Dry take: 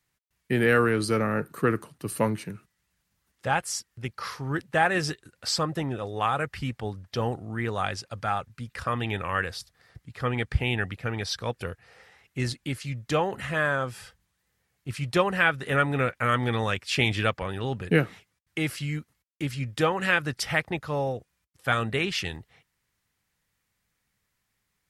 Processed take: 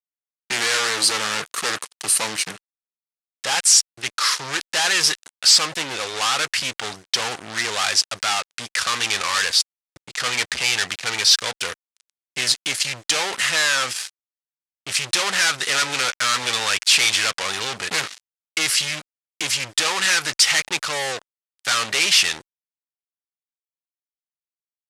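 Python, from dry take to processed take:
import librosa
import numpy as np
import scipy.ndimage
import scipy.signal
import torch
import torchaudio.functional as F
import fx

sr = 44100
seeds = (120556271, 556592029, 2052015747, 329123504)

y = fx.fuzz(x, sr, gain_db=37.0, gate_db=-44.0)
y = fx.weighting(y, sr, curve='ITU-R 468')
y = F.gain(torch.from_numpy(y), -8.0).numpy()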